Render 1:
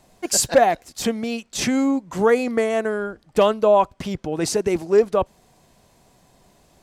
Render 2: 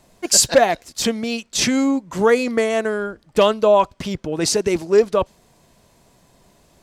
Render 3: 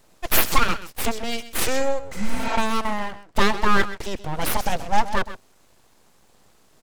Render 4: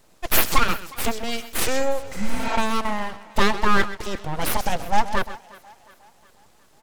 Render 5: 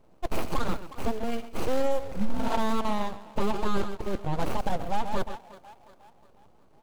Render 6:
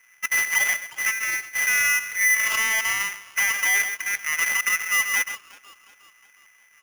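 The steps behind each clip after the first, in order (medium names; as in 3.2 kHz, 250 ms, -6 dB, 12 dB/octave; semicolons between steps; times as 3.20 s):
band-stop 760 Hz, Q 12; dynamic bell 4.6 kHz, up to +6 dB, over -41 dBFS, Q 0.72; trim +1.5 dB
delay 129 ms -14 dB; full-wave rectifier; spectral replace 2.18–2.54 s, 290–8000 Hz both; trim -1 dB
thinning echo 361 ms, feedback 52%, high-pass 260 Hz, level -20.5 dB
median filter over 25 samples; peak limiter -15.5 dBFS, peak gain reduction 9.5 dB
polarity switched at an audio rate 2 kHz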